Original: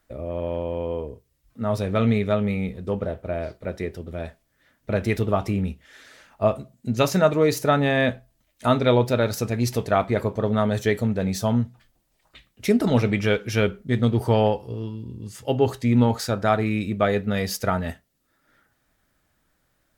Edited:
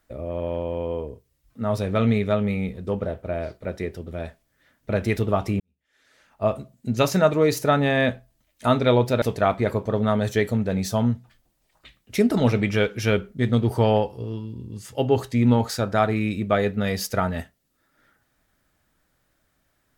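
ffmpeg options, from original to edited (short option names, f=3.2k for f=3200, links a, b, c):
-filter_complex "[0:a]asplit=3[a][b][c];[a]atrim=end=5.6,asetpts=PTS-STARTPTS,afade=t=out:st=5.596:d=0.004:c=hsin[d];[b]atrim=start=5.6:end=9.222,asetpts=PTS-STARTPTS,afade=t=in:d=0.97:c=qua[e];[c]atrim=start=9.718[f];[d][e]concat=n=2:v=0:a=1[g];[g][f]acrossfade=d=0.004:c1=hsin:c2=hsin"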